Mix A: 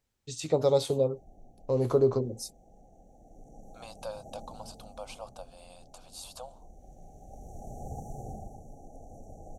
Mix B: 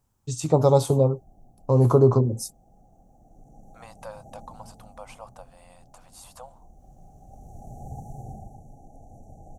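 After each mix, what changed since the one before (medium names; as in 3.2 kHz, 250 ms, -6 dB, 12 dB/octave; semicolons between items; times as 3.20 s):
first voice +9.0 dB; second voice: remove static phaser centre 800 Hz, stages 4; master: add graphic EQ 125/500/1000/2000/4000 Hz +5/-6/+7/-11/-9 dB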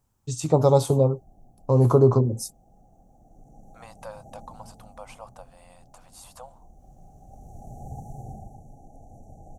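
no change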